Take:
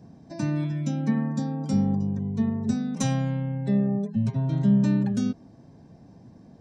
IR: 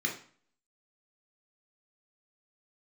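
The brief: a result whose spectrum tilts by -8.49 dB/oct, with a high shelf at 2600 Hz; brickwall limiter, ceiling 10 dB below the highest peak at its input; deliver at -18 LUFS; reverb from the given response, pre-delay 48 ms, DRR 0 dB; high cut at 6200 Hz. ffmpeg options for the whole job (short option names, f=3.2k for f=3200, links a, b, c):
-filter_complex "[0:a]lowpass=6.2k,highshelf=f=2.6k:g=8,alimiter=limit=-21.5dB:level=0:latency=1,asplit=2[a][b];[1:a]atrim=start_sample=2205,adelay=48[c];[b][c]afir=irnorm=-1:irlink=0,volume=-6dB[d];[a][d]amix=inputs=2:normalize=0,volume=7.5dB"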